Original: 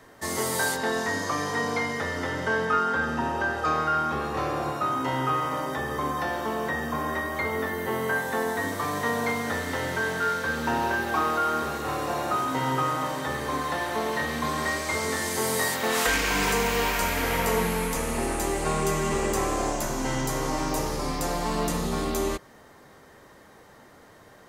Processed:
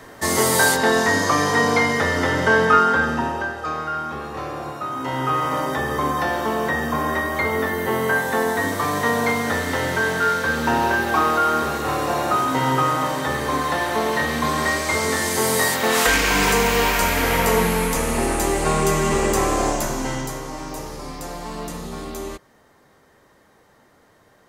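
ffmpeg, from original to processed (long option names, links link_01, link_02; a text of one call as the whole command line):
ffmpeg -i in.wav -af "volume=17.5dB,afade=type=out:start_time=2.74:duration=0.81:silence=0.281838,afade=type=in:start_time=4.9:duration=0.67:silence=0.398107,afade=type=out:start_time=19.69:duration=0.75:silence=0.298538" out.wav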